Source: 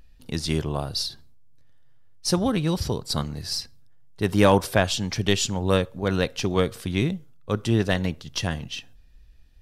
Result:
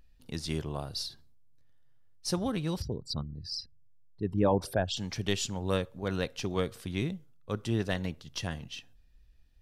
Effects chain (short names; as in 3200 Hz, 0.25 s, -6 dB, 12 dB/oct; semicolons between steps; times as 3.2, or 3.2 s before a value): 2.82–4.97 formant sharpening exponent 2; gain -8.5 dB